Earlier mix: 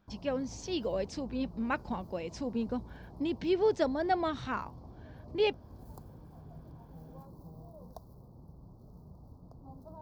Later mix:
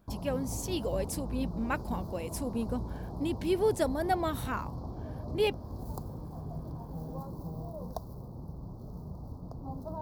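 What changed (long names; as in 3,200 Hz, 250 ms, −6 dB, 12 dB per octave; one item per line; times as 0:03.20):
speech: remove Butterworth low-pass 6,000 Hz
background +10.0 dB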